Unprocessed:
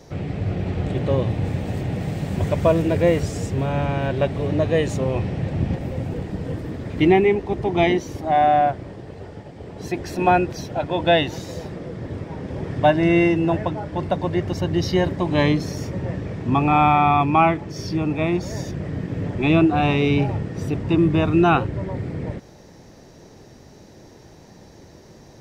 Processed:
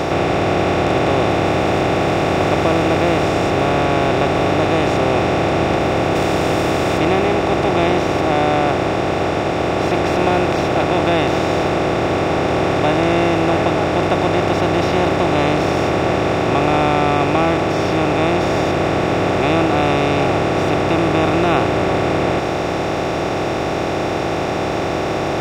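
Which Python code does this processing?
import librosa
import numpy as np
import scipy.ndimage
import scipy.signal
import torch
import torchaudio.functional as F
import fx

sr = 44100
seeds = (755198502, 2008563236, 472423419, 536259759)

y = fx.bin_compress(x, sr, power=0.2)
y = fx.high_shelf(y, sr, hz=6700.0, db=11.0, at=(6.15, 6.98))
y = y * 10.0 ** (-7.0 / 20.0)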